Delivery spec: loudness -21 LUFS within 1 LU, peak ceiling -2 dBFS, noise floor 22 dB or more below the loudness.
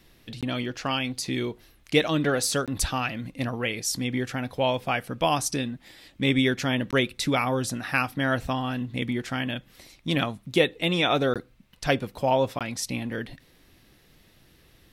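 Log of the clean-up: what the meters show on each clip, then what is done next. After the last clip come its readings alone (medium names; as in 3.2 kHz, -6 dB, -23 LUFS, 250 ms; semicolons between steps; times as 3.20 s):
dropouts 5; longest dropout 17 ms; loudness -26.5 LUFS; peak level -6.5 dBFS; loudness target -21.0 LUFS
-> interpolate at 0.41/2.66/6.91/11.34/12.59 s, 17 ms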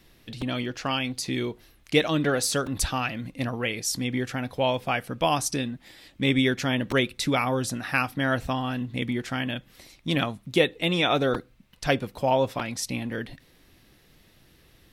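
dropouts 0; loudness -26.5 LUFS; peak level -6.5 dBFS; loudness target -21.0 LUFS
-> trim +5.5 dB; peak limiter -2 dBFS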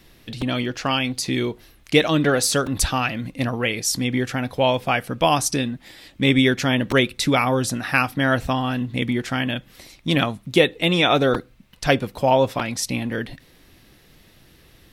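loudness -21.0 LUFS; peak level -2.0 dBFS; noise floor -53 dBFS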